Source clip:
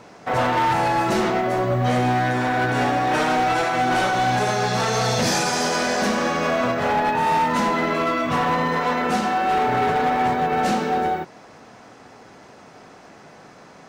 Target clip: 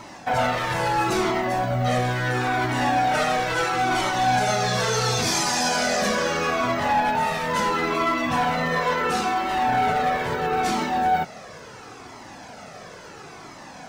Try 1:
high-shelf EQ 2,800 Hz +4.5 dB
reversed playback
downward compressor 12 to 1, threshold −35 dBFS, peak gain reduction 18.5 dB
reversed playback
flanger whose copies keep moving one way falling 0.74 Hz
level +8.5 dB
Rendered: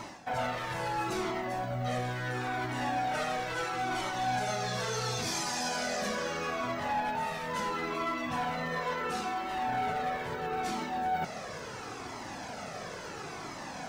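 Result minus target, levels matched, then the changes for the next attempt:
downward compressor: peak gain reduction +10.5 dB
change: downward compressor 12 to 1, threshold −23.5 dBFS, peak gain reduction 8 dB

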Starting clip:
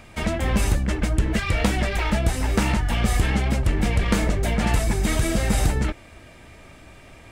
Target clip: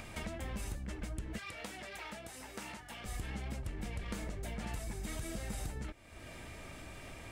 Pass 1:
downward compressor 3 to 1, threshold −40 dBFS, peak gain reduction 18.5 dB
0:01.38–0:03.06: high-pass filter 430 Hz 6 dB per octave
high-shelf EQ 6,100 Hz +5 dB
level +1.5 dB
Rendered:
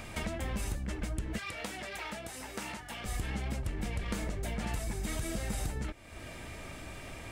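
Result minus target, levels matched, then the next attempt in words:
downward compressor: peak gain reduction −5.5 dB
downward compressor 3 to 1, threshold −48 dBFS, peak gain reduction 24 dB
0:01.38–0:03.06: high-pass filter 430 Hz 6 dB per octave
high-shelf EQ 6,100 Hz +5 dB
level +1.5 dB

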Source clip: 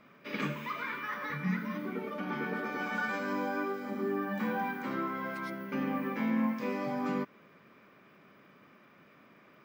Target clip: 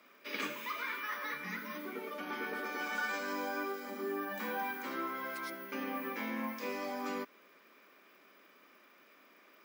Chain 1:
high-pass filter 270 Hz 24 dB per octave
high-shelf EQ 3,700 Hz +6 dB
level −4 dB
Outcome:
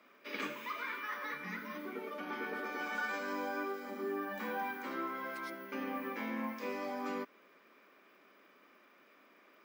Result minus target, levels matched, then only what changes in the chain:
8,000 Hz band −5.0 dB
change: high-shelf EQ 3,700 Hz +14 dB

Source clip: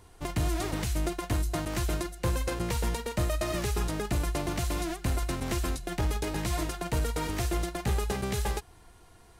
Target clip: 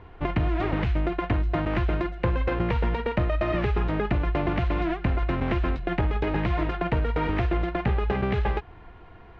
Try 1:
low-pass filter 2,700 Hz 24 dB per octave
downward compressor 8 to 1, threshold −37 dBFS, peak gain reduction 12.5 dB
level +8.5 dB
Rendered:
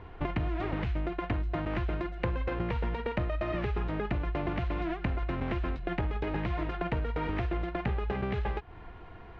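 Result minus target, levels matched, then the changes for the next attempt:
downward compressor: peak gain reduction +7 dB
change: downward compressor 8 to 1, threshold −29 dBFS, peak gain reduction 5.5 dB

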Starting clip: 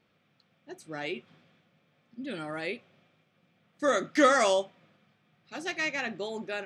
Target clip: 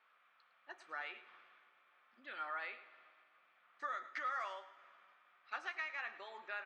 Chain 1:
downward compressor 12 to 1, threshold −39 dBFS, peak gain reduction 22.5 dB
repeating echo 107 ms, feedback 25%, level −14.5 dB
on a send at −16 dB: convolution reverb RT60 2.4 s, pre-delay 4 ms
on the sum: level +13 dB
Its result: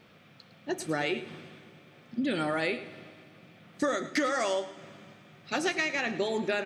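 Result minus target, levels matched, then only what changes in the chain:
1,000 Hz band −5.0 dB
add after downward compressor: four-pole ladder band-pass 1,400 Hz, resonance 45%

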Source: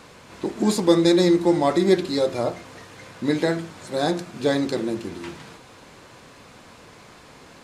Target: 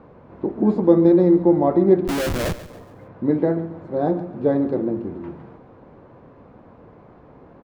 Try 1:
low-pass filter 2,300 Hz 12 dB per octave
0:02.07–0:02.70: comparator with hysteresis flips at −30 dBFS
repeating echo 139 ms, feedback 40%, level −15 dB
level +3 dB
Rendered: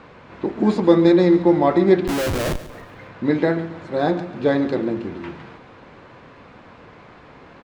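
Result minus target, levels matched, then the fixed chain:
2,000 Hz band +6.5 dB
low-pass filter 770 Hz 12 dB per octave
0:02.07–0:02.70: comparator with hysteresis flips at −30 dBFS
repeating echo 139 ms, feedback 40%, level −15 dB
level +3 dB

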